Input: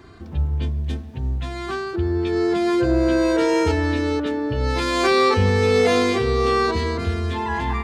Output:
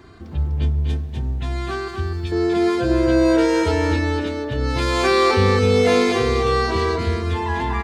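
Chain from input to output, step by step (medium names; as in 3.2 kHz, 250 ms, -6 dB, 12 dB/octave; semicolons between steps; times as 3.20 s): 1.88–2.32 s: FFT filter 170 Hz 0 dB, 360 Hz -14 dB, 8 kHz +5 dB; delay 248 ms -5 dB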